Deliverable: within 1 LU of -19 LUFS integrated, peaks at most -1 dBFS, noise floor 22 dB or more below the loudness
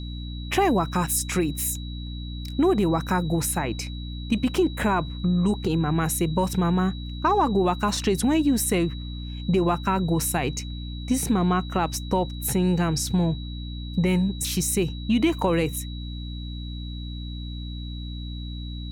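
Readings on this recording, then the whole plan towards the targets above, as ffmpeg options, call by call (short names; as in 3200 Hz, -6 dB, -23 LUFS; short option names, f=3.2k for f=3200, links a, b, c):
hum 60 Hz; harmonics up to 300 Hz; hum level -31 dBFS; steady tone 3900 Hz; tone level -42 dBFS; loudness -25.0 LUFS; peak -9.5 dBFS; loudness target -19.0 LUFS
-> -af "bandreject=f=60:t=h:w=6,bandreject=f=120:t=h:w=6,bandreject=f=180:t=h:w=6,bandreject=f=240:t=h:w=6,bandreject=f=300:t=h:w=6"
-af "bandreject=f=3.9k:w=30"
-af "volume=6dB"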